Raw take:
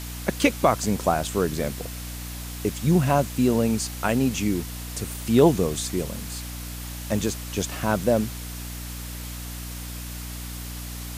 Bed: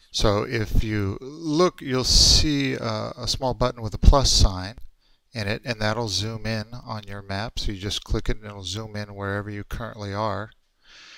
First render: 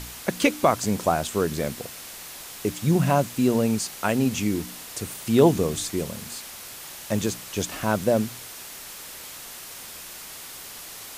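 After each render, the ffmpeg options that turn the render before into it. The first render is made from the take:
-af "bandreject=f=60:t=h:w=4,bandreject=f=120:t=h:w=4,bandreject=f=180:t=h:w=4,bandreject=f=240:t=h:w=4,bandreject=f=300:t=h:w=4"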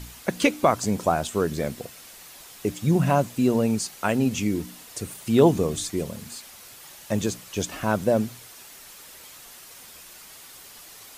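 -af "afftdn=nr=7:nf=-40"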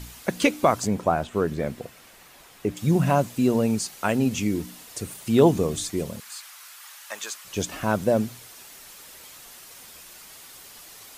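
-filter_complex "[0:a]asettb=1/sr,asplit=3[s0][s1][s2];[s0]atrim=end=0.874[s3];[s1]atrim=start=0.87:end=2.77,asetpts=PTS-STARTPTS,afade=t=in:d=0.004:c=qsin,afade=t=out:st=1.896:d=0.004:c=qsin,acrossover=split=2900[s4][s5];[s5]acompressor=threshold=0.00282:ratio=4:attack=1:release=60[s6];[s4][s6]amix=inputs=2:normalize=0[s7];[s2]atrim=start=2.766[s8];[s3][s7]acrossfade=d=0.004:c1=hsin:c2=qsin[s9];[s9][s8]acrossfade=d=0.004:c1=qsin:c2=hsin,asettb=1/sr,asplit=3[s10][s11][s12];[s10]atrim=end=6.204[s13];[s11]atrim=start=6.2:end=7.45,asetpts=PTS-STARTPTS,afade=t=in:d=0.004:c=qsin,afade=t=out:st=1.246:d=0.004:c=qsin,highpass=f=1200:t=q:w=1.6[s14];[s12]atrim=start=7.446[s15];[s13][s14]acrossfade=d=0.004:c1=hsin:c2=qsin[s16];[s16][s15]acrossfade=d=0.004:c1=qsin:c2=hsin"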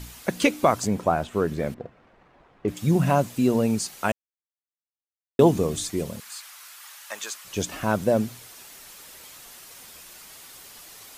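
-filter_complex "[0:a]asettb=1/sr,asplit=3[s0][s1][s2];[s0]atrim=end=1.744[s3];[s1]atrim=start=1.74:end=2.68,asetpts=PTS-STARTPTS,afade=t=in:d=0.004:c=qsin,afade=t=out:st=0.936:d=0.004:c=qsin,adynamicsmooth=sensitivity=3.5:basefreq=1200[s4];[s2]atrim=start=2.676[s5];[s3][s4]acrossfade=d=0.004:c1=hsin:c2=qsin[s6];[s6][s5]acrossfade=d=0.004:c1=qsin:c2=hsin,asplit=3[s7][s8][s9];[s7]atrim=end=4.12,asetpts=PTS-STARTPTS,afade=t=out:st=4.116:d=0.004:c=hsin[s10];[s8]atrim=start=4.12:end=5.39,asetpts=PTS-STARTPTS,volume=0[s11];[s9]atrim=start=5.39,asetpts=PTS-STARTPTS,afade=t=in:d=0.004:c=hsin[s12];[s10][s11][s12]concat=n=3:v=0:a=1"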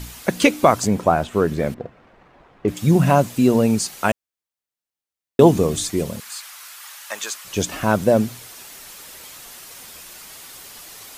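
-af "volume=1.88,alimiter=limit=0.891:level=0:latency=1"

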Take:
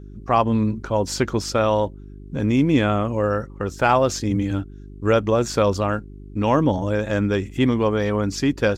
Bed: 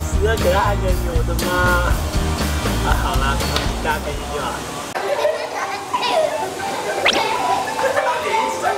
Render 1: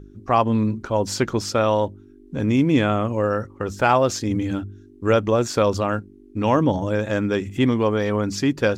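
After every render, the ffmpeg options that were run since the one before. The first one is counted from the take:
-af "bandreject=f=50:t=h:w=4,bandreject=f=100:t=h:w=4,bandreject=f=150:t=h:w=4,bandreject=f=200:t=h:w=4"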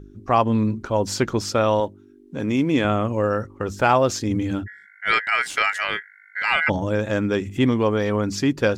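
-filter_complex "[0:a]asettb=1/sr,asplit=3[s0][s1][s2];[s0]atrim=end=1.804[s3];[s1]atrim=start=1.8:end=2.85,asetpts=PTS-STARTPTS,afade=t=in:d=0.004:c=qsin,afade=t=out:st=1.046:d=0.004:c=qsin,highpass=f=220:p=1[s4];[s2]atrim=start=2.846[s5];[s3][s4]acrossfade=d=0.004:c1=hsin:c2=qsin[s6];[s6][s5]acrossfade=d=0.004:c1=qsin:c2=hsin,asplit=3[s7][s8][s9];[s7]afade=t=out:st=4.66:d=0.02[s10];[s8]aeval=exprs='val(0)*sin(2*PI*1800*n/s)':c=same,afade=t=in:st=4.66:d=0.02,afade=t=out:st=6.68:d=0.02[s11];[s9]afade=t=in:st=6.68:d=0.02[s12];[s10][s11][s12]amix=inputs=3:normalize=0"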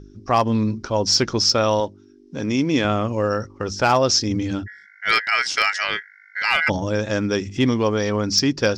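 -af "lowpass=f=5400:t=q:w=6.7,volume=2.51,asoftclip=hard,volume=0.398"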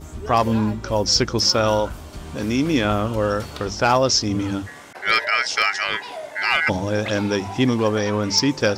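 -filter_complex "[1:a]volume=0.158[s0];[0:a][s0]amix=inputs=2:normalize=0"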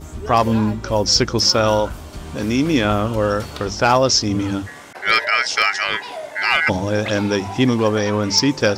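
-af "volume=1.33"

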